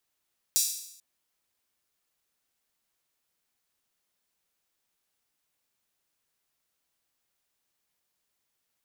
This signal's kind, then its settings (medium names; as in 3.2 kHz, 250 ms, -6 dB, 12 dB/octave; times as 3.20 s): open hi-hat length 0.44 s, high-pass 5.5 kHz, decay 0.75 s